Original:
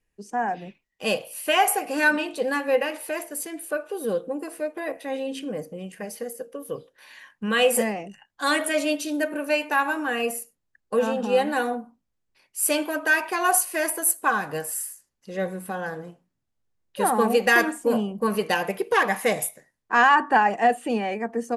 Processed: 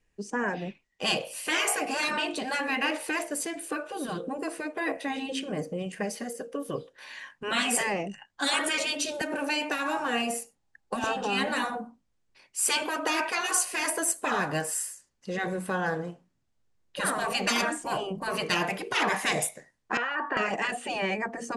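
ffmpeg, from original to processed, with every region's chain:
-filter_complex "[0:a]asettb=1/sr,asplit=3[s0][s1][s2];[s0]atrim=end=9.214[s3];[s1]atrim=start=9.21:end=11.04,asetpts=PTS-STARTPTS,afade=t=in:d=0.004:c=qsin,afade=t=out:st=1.826:d=0.004:c=qsin,acrossover=split=200|3000[s4][s5][s6];[s5]acompressor=threshold=0.0355:ratio=2.5:attack=3.2:release=140:knee=2.83:detection=peak[s7];[s4][s7][s6]amix=inputs=3:normalize=0,equalizer=f=810:w=6.1:g=11.5,acrusher=bits=8:mode=log:mix=0:aa=0.000001[s8];[s2]atrim=start=11.036[s9];[s3][s8]acrossfade=d=0.004:c1=hsin:c2=qsin[s10];[s10][s9]acrossfade=d=0.004:c1=qsin:c2=hsin,asettb=1/sr,asplit=3[s11][s12][s13];[s11]atrim=end=19.974[s14];[s12]atrim=start=19.97:end=20.37,asetpts=PTS-STARTPTS,afade=t=in:d=0.004:c=qsin,afade=t=out:st=0.396:d=0.004:c=qsin,highpass=500,lowpass=2400,acompressor=threshold=0.0447:ratio=2:attack=3.2:release=140:knee=1:detection=peak[s15];[s13]atrim=start=20.366[s16];[s14][s15]acrossfade=d=0.004:c1=hsin:c2=qsin[s17];[s17][s16]acrossfade=d=0.004:c1=qsin:c2=hsin,afftfilt=real='re*lt(hypot(re,im),0.224)':imag='im*lt(hypot(re,im),0.224)':win_size=1024:overlap=0.75,lowpass=f=9000:w=0.5412,lowpass=f=9000:w=1.3066,volume=1.58"

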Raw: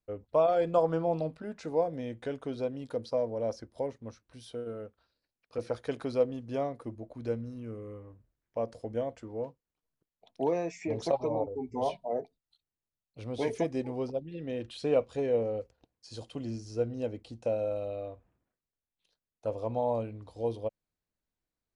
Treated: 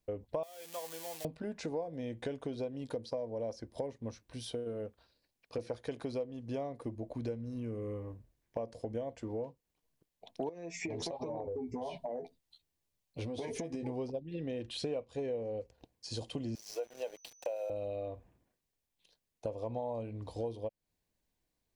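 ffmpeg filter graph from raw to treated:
-filter_complex "[0:a]asettb=1/sr,asplit=3[s0][s1][s2];[s0]atrim=end=0.434[s3];[s1]atrim=start=0.43:end=1.25,asetpts=PTS-STARTPTS,afade=t=in:d=0.004:c=qsin,afade=t=out:st=0.816:d=0.004:c=qsin,aeval=exprs='val(0)+0.5*0.0168*sgn(val(0))':c=same,highpass=53,aderivative[s4];[s2]atrim=start=1.246[s5];[s3][s4]acrossfade=d=0.004:c1=hsin:c2=qsin[s6];[s6][s5]acrossfade=d=0.004:c1=qsin:c2=hsin,asettb=1/sr,asplit=3[s7][s8][s9];[s7]atrim=end=10.494[s10];[s8]atrim=start=10.49:end=13.83,asetpts=PTS-STARTPTS,afade=t=in:d=0.004:c=qsin,afade=t=out:st=3.336:d=0.004:c=qsin,asplit=2[s11][s12];[s12]adelay=12,volume=0.562[s13];[s11][s13]amix=inputs=2:normalize=0,atrim=end_sample=147294,acompressor=threshold=0.0141:ratio=10:attack=3.2:release=140:knee=1:detection=peak[s14];[s9]atrim=start=13.826[s15];[s10][s14]acrossfade=d=0.004:c1=hsin:c2=qsin[s16];[s16][s15]acrossfade=d=0.004:c1=qsin:c2=hsin,asettb=1/sr,asplit=3[s17][s18][s19];[s17]atrim=end=16.554[s20];[s18]atrim=start=16.55:end=17.7,asetpts=PTS-STARTPTS,afade=t=in:d=0.004:c=qsin,afade=t=out:st=1.146:d=0.004:c=qsin,highpass=f=530:w=0.5412,highpass=f=530:w=1.3066,aeval=exprs='val(0)*gte(abs(val(0)),0.00251)':c=same,aeval=exprs='val(0)+0.000501*sin(2*PI*6000*n/s)':c=same[s21];[s19]atrim=start=17.696[s22];[s20][s21]acrossfade=d=0.004:c1=hsin:c2=qsin[s23];[s23][s22]acrossfade=d=0.004:c1=qsin:c2=hsin,equalizer=f=1400:t=o:w=0.57:g=-4,bandreject=f=1300:w=9.8,acompressor=threshold=0.00794:ratio=6,volume=2.11"

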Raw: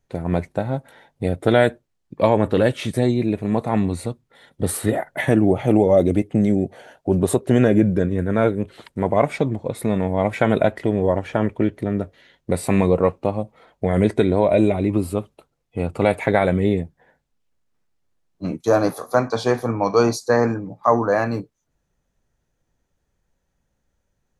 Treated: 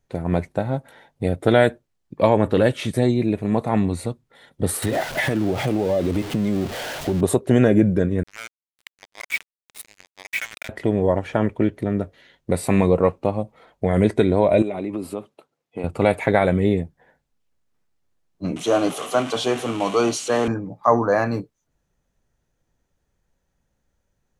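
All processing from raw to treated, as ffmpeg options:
-filter_complex "[0:a]asettb=1/sr,asplit=3[s0][s1][s2];[s0]atrim=end=4.824[s3];[s1]atrim=start=4.82:end=7.21,asetpts=PTS-STARTPTS,afade=t=in:d=0.004:c=qsin,afade=t=out:st=2.386:d=0.004:c=qsin,aeval=exprs='val(0)+0.5*0.0447*sgn(val(0))':c=same,equalizer=f=3600:w=0.84:g=4.5,acompressor=threshold=0.141:ratio=5:attack=3.2:release=140:knee=1:detection=peak[s4];[s2]atrim=start=7.206[s5];[s3][s4]acrossfade=d=0.004:c1=hsin:c2=qsin[s6];[s6][s5]acrossfade=d=0.004:c1=qsin:c2=hsin,asettb=1/sr,asplit=3[s7][s8][s9];[s7]atrim=end=8.234[s10];[s8]atrim=start=8.23:end=10.69,asetpts=PTS-STARTPTS,afade=t=in:d=0.004:c=qsin,afade=t=out:st=2.456:d=0.004:c=qsin,acompressor=threshold=0.0708:ratio=2:attack=3.2:release=140:knee=1:detection=peak,highpass=f=2300:t=q:w=2.5,acrusher=bits=4:mix=0:aa=0.5[s11];[s9]atrim=start=10.686[s12];[s10][s11]acrossfade=d=0.004:c1=hsin:c2=qsin[s13];[s13][s12]acrossfade=d=0.004:c1=qsin:c2=hsin,asettb=1/sr,asplit=3[s14][s15][s16];[s14]atrim=end=14.624[s17];[s15]atrim=start=14.62:end=15.84,asetpts=PTS-STARTPTS,afade=t=in:d=0.004:c=qsin,afade=t=out:st=1.216:d=0.004:c=qsin,highpass=210,highshelf=f=7200:g=-6.5,acompressor=threshold=0.0708:ratio=4:attack=3.2:release=140:knee=1:detection=peak[s18];[s16]atrim=start=15.836[s19];[s17][s18]acrossfade=d=0.004:c1=hsin:c2=qsin[s20];[s20][s19]acrossfade=d=0.004:c1=qsin:c2=hsin,asettb=1/sr,asplit=3[s21][s22][s23];[s21]atrim=end=18.564[s24];[s22]atrim=start=18.56:end=20.48,asetpts=PTS-STARTPTS,afade=t=in:d=0.004:c=qsin,afade=t=out:st=1.916:d=0.004:c=qsin,aeval=exprs='val(0)+0.5*0.0531*sgn(val(0))':c=same,highpass=200,equalizer=f=220:t=q:w=4:g=-3,equalizer=f=500:t=q:w=4:g=-6,equalizer=f=910:t=q:w=4:g=-6,equalizer=f=1700:t=q:w=4:g=-7,equalizer=f=3000:t=q:w=4:g=9,equalizer=f=4800:t=q:w=4:g=-8,lowpass=f=9600:w=0.5412,lowpass=f=9600:w=1.3066[s25];[s23]atrim=start=20.476[s26];[s24][s25]acrossfade=d=0.004:c1=hsin:c2=qsin[s27];[s27][s26]acrossfade=d=0.004:c1=qsin:c2=hsin"

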